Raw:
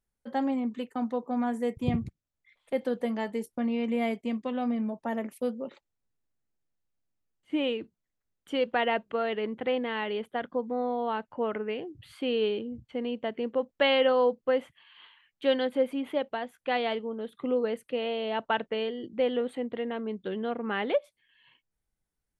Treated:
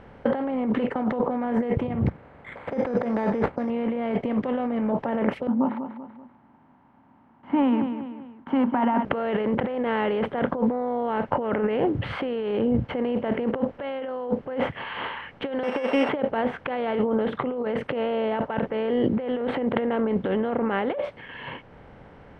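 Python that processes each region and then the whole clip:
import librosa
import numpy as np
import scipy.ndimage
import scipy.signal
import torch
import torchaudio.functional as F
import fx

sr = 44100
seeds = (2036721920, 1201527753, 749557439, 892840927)

y = fx.chain(x, sr, fx.highpass(hz=46.0, slope=12),
    fx.resample_bad(factor=8, down='none', up='hold'),
    fx.peak_eq(hz=3100.0, db=-11.5, octaves=0.45), at=(2.07, 3.7))
y = fx.chain(y, sr, fx.double_bandpass(hz=480.0, octaves=1.9),
    fx.echo_feedback(ms=193, feedback_pct=26, wet_db=-16), at=(5.47, 9.05))
y = fx.chain(y, sr, fx.sample_sort(block=16),
    fx.highpass(hz=520.0, slope=12), at=(15.63, 16.09))
y = fx.bin_compress(y, sr, power=0.6)
y = scipy.signal.sosfilt(scipy.signal.butter(2, 1600.0, 'lowpass', fs=sr, output='sos'), y)
y = fx.over_compress(y, sr, threshold_db=-33.0, ratio=-1.0)
y = y * 10.0 ** (8.0 / 20.0)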